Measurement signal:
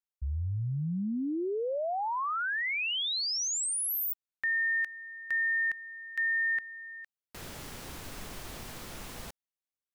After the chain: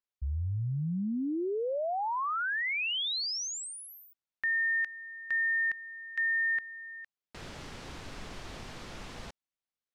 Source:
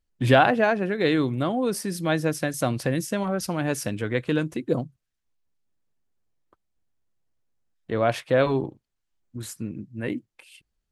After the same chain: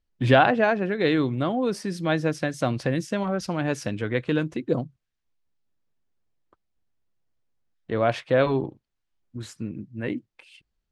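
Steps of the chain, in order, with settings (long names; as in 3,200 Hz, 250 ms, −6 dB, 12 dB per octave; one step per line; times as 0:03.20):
low-pass filter 5,500 Hz 12 dB per octave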